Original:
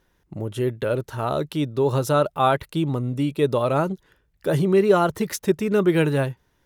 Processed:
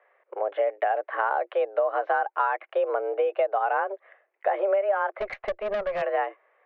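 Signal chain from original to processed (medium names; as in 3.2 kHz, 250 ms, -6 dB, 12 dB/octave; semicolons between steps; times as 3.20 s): mistuned SSB +200 Hz 270–2200 Hz; compression 16:1, threshold -27 dBFS, peak gain reduction 16.5 dB; 5.19–6.02 s: valve stage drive 29 dB, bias 0.4; trim +6.5 dB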